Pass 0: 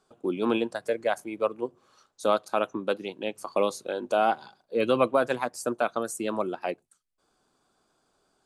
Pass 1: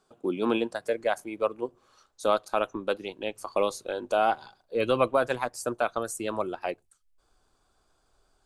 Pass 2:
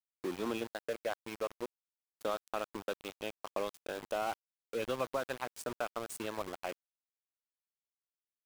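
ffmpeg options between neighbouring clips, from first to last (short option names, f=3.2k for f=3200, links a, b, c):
-af "asubboost=boost=9.5:cutoff=63"
-af "acompressor=threshold=-32dB:ratio=2,aeval=exprs='val(0)*gte(abs(val(0)),0.0188)':c=same,volume=-4.5dB"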